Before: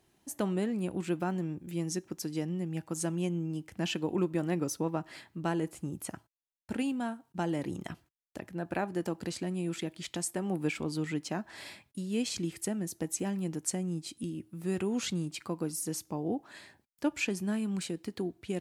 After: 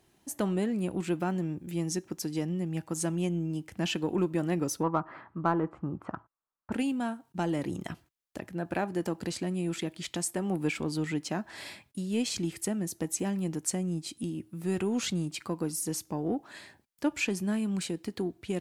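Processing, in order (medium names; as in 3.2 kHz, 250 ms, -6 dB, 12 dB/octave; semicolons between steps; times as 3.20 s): 4.83–6.72 s: resonant low-pass 1.2 kHz, resonance Q 3.9; in parallel at -8 dB: saturation -30 dBFS, distortion -11 dB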